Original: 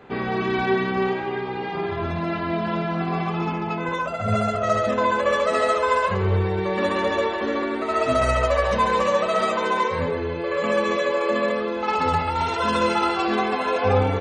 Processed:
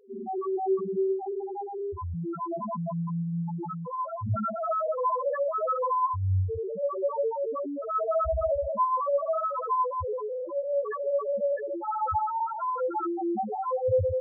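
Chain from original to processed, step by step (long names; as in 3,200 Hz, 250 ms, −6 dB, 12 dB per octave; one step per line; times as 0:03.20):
on a send: delay with a band-pass on its return 194 ms, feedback 68%, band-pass 940 Hz, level −7 dB
on the sum: spectral peaks only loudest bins 1
level +2 dB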